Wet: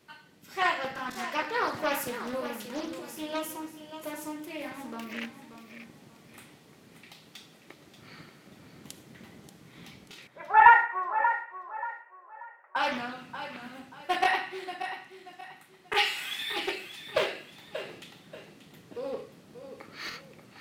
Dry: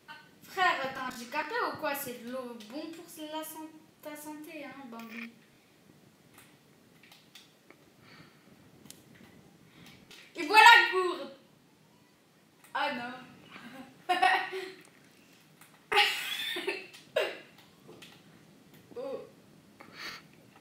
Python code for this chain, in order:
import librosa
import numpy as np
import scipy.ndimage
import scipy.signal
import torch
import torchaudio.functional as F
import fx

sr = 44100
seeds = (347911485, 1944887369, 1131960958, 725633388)

y = fx.ellip_bandpass(x, sr, low_hz=540.0, high_hz=1700.0, order=3, stop_db=50, at=(10.27, 12.76))
y = fx.rider(y, sr, range_db=5, speed_s=2.0)
y = fx.echo_feedback(y, sr, ms=584, feedback_pct=32, wet_db=-10.5)
y = fx.doppler_dist(y, sr, depth_ms=0.36)